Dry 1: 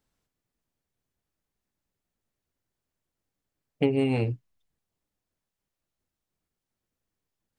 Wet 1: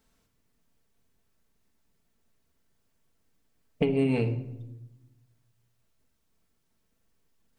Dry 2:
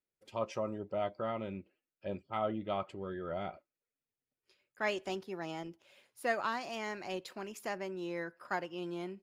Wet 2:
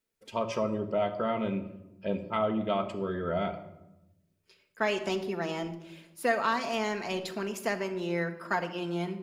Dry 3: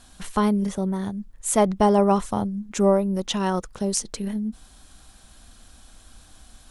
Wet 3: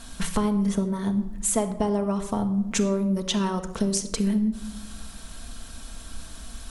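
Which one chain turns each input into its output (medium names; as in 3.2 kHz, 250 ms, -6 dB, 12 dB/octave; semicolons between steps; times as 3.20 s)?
compression 8:1, threshold -31 dBFS; band-stop 770 Hz, Q 12; simulated room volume 3600 m³, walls furnished, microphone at 1.6 m; trim +7.5 dB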